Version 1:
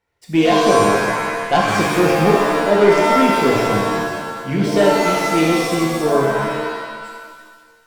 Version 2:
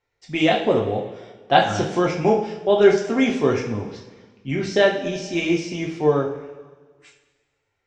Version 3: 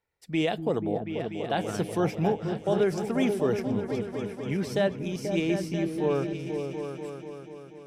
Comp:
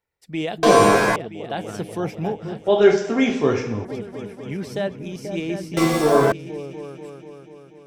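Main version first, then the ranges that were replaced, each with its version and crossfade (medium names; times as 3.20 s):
3
0.63–1.16 s: from 1
2.68–3.85 s: from 2
5.77–6.32 s: from 1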